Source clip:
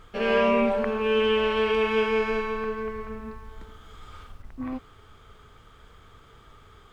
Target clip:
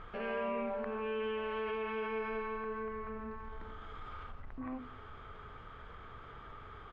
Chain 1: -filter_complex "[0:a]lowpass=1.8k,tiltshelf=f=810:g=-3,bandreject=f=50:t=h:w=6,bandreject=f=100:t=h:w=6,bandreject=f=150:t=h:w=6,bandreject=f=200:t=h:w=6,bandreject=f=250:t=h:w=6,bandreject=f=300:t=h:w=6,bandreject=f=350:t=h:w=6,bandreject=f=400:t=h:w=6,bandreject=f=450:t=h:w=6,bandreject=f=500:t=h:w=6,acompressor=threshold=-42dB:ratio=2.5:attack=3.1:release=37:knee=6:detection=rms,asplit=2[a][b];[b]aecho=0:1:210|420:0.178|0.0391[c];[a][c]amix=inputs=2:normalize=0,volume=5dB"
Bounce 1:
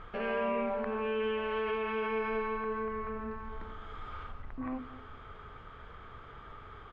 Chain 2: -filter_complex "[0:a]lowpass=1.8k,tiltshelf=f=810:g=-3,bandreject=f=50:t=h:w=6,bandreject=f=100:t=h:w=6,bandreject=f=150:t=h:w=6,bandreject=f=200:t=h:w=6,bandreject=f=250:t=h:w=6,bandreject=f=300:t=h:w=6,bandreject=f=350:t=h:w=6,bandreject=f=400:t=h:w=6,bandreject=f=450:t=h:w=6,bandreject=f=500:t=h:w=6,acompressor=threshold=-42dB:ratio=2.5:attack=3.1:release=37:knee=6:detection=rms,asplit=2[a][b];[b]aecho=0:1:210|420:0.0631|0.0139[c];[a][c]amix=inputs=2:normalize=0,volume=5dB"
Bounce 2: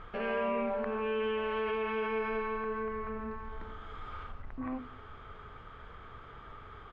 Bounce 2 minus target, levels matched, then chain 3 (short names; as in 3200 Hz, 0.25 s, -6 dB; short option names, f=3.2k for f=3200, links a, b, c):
compressor: peak gain reduction -4 dB
-filter_complex "[0:a]lowpass=1.8k,tiltshelf=f=810:g=-3,bandreject=f=50:t=h:w=6,bandreject=f=100:t=h:w=6,bandreject=f=150:t=h:w=6,bandreject=f=200:t=h:w=6,bandreject=f=250:t=h:w=6,bandreject=f=300:t=h:w=6,bandreject=f=350:t=h:w=6,bandreject=f=400:t=h:w=6,bandreject=f=450:t=h:w=6,bandreject=f=500:t=h:w=6,acompressor=threshold=-49dB:ratio=2.5:attack=3.1:release=37:knee=6:detection=rms,asplit=2[a][b];[b]aecho=0:1:210|420:0.0631|0.0139[c];[a][c]amix=inputs=2:normalize=0,volume=5dB"